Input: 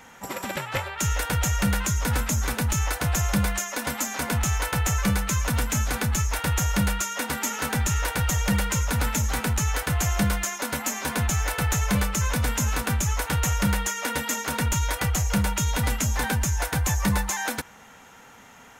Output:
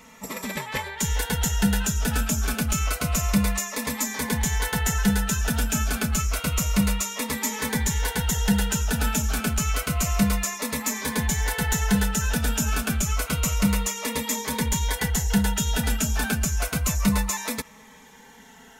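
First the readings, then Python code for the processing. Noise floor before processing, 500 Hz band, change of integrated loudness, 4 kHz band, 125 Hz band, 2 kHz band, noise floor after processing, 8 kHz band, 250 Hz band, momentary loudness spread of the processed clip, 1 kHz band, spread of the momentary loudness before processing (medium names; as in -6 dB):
-49 dBFS, 0.0 dB, +0.5 dB, +1.5 dB, -1.5 dB, -0.5 dB, -49 dBFS, +1.0 dB, +3.5 dB, 4 LU, -2.0 dB, 4 LU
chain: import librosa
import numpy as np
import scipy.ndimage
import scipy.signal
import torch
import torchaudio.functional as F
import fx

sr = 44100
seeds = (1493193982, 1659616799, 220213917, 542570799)

y = x + 0.69 * np.pad(x, (int(4.6 * sr / 1000.0), 0))[:len(x)]
y = fx.notch_cascade(y, sr, direction='falling', hz=0.29)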